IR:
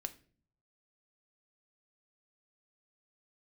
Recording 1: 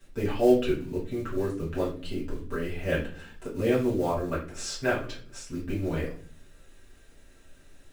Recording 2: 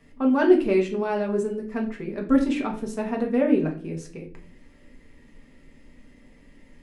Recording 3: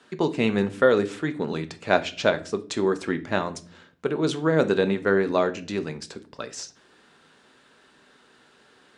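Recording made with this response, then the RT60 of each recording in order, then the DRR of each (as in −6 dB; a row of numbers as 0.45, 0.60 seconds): 3; 0.45, 0.45, 0.45 seconds; −9.0, 0.0, 9.0 decibels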